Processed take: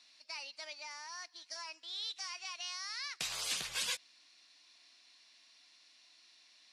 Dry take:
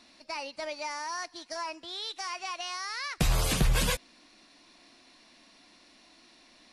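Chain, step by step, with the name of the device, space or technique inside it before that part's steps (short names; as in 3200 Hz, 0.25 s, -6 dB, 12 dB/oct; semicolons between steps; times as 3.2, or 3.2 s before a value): piezo pickup straight into a mixer (LPF 5100 Hz 12 dB/oct; differentiator); 0.73–1.44 high shelf 3700 Hz -6 dB; gain +3.5 dB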